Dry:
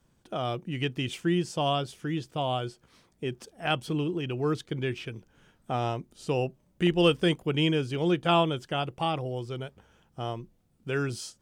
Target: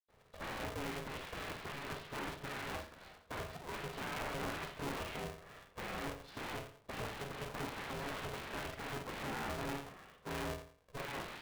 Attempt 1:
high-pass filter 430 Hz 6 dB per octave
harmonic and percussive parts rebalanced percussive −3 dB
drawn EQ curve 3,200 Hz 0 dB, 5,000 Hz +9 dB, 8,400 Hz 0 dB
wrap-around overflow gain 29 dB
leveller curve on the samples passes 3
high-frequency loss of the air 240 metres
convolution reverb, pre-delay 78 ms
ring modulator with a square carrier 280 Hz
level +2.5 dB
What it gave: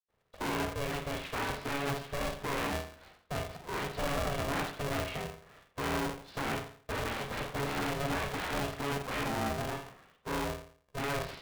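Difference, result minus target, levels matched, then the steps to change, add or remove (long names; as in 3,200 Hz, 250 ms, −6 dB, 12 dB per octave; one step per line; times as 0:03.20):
wrap-around overflow: distortion −13 dB
change: wrap-around overflow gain 36.5 dB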